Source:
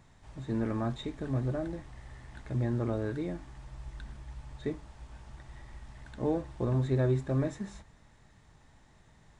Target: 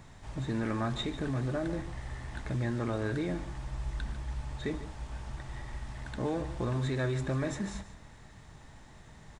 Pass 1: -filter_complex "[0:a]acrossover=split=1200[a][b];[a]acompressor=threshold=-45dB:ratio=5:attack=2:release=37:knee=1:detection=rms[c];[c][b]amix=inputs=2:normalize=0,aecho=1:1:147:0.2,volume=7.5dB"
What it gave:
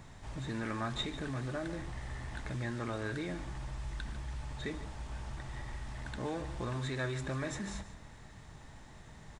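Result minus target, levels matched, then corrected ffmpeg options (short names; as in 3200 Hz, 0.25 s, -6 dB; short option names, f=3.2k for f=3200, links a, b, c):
compressor: peak gain reduction +6 dB
-filter_complex "[0:a]acrossover=split=1200[a][b];[a]acompressor=threshold=-37.5dB:ratio=5:attack=2:release=37:knee=1:detection=rms[c];[c][b]amix=inputs=2:normalize=0,aecho=1:1:147:0.2,volume=7.5dB"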